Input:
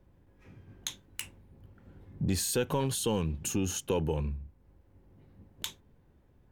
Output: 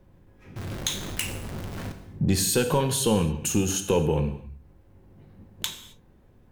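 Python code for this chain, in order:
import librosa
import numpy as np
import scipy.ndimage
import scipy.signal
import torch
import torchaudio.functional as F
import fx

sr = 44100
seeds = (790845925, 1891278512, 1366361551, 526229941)

y = fx.zero_step(x, sr, step_db=-36.5, at=(0.56, 1.92))
y = fx.rev_gated(y, sr, seeds[0], gate_ms=290, shape='falling', drr_db=7.0)
y = F.gain(torch.from_numpy(y), 6.5).numpy()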